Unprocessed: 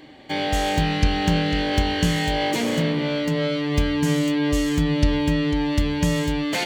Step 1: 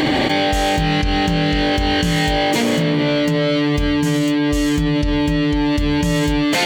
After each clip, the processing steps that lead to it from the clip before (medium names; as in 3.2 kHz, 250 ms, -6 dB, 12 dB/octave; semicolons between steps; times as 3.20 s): level flattener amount 100%; trim -3.5 dB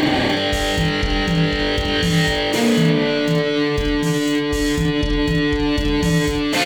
peak limiter -10 dBFS, peak gain reduction 4.5 dB; doubling 30 ms -5 dB; delay 73 ms -6 dB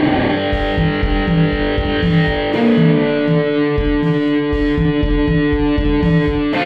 distance through air 440 m; trim +4.5 dB